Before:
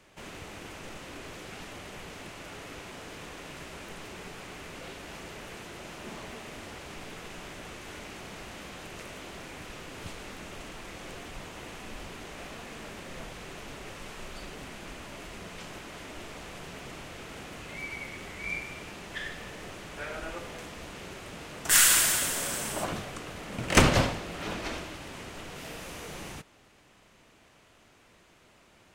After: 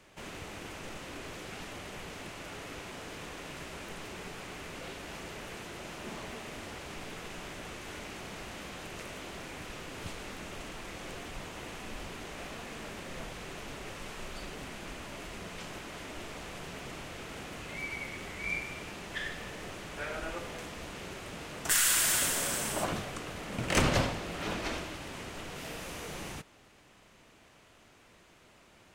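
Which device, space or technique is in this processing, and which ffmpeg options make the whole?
clipper into limiter: -af "asoftclip=type=hard:threshold=0.398,alimiter=limit=0.168:level=0:latency=1:release=272"

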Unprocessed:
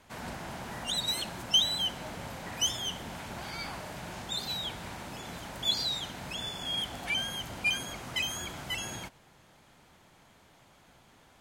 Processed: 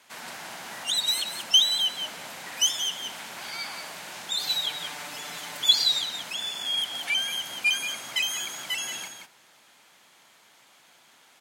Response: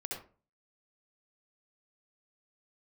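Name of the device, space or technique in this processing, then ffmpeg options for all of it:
ducked delay: -filter_complex "[0:a]asettb=1/sr,asplit=3[s0][s1][s2];[s0]atrim=end=4.394[s3];[s1]atrim=start=4.39:end=6.04,asetpts=PTS-STARTPTS,afade=t=in:d=0.004:c=qsin,afade=t=out:st=1.646:d=0.004:c=qsin,aecho=1:1:6.8:0.85,atrim=end_sample=72765[s4];[s2]atrim=start=6.036[s5];[s3][s4]acrossfade=d=0.004:c1=hsin:c2=qsin[s6];[s6][s5]acrossfade=d=0.004:c1=qsin:c2=hsin,highpass=200,tiltshelf=f=970:g=-7,asplit=3[s7][s8][s9];[s8]adelay=177,volume=0.501[s10];[s9]apad=whole_len=510959[s11];[s10][s11]sidechaincompress=threshold=0.02:ratio=8:attack=16:release=190[s12];[s7][s12]amix=inputs=2:normalize=0"

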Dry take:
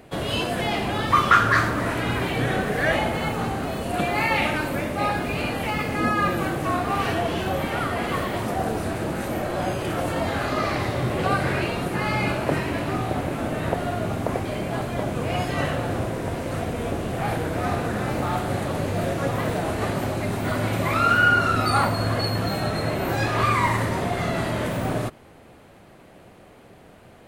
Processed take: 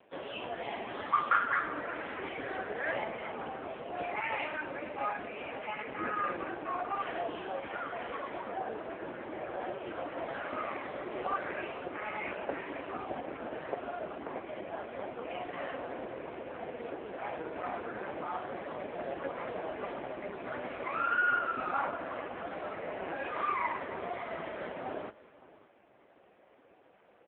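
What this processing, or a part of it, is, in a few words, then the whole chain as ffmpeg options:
satellite phone: -filter_complex "[0:a]lowpass=5500,asettb=1/sr,asplit=3[s0][s1][s2];[s0]atrim=end=4.454[s3];[s1]atrim=start=4.45:end=5.9,asetpts=PTS-STARTPTS,afade=t=in:d=0.004:c=qsin,afade=t=out:st=1.446:d=0.004:c=qsin,bandreject=f=50:t=h:w=6,bandreject=f=100:t=h:w=6,bandreject=f=150:t=h:w=6,bandreject=f=200:t=h:w=6,bandreject=f=250:t=h:w=6,bandreject=f=300:t=h:w=6,bandreject=f=350:t=h:w=6,bandreject=f=400:t=h:w=6[s4];[s2]atrim=start=5.896[s5];[s3][s4]acrossfade=d=0.004:c1=hsin:c2=qsin[s6];[s6][s5]acrossfade=d=0.004:c1=qsin:c2=hsin,highpass=150,highpass=310,lowpass=3100,aecho=1:1:565:0.106,volume=0.422" -ar 8000 -c:a libopencore_amrnb -b:a 5150

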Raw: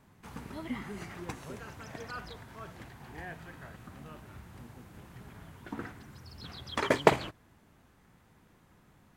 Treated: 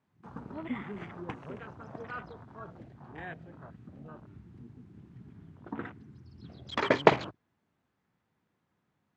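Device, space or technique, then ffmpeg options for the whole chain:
over-cleaned archive recording: -af "highpass=100,lowpass=5700,afwtdn=0.00501,volume=1.19"

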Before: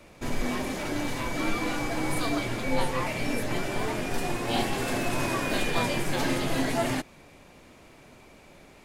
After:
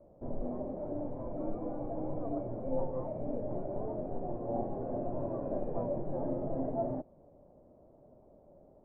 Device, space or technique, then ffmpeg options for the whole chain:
under water: -af "lowpass=f=760:w=0.5412,lowpass=f=760:w=1.3066,equalizer=f=590:t=o:w=0.41:g=8.5,volume=0.398"

